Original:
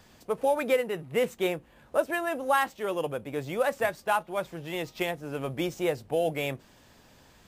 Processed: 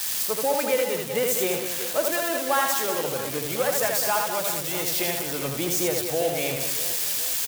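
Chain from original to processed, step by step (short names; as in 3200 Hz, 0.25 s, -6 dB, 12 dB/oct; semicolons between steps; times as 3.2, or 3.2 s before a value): switching spikes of -19.5 dBFS; on a send: reverse bouncing-ball echo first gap 80 ms, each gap 1.5×, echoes 5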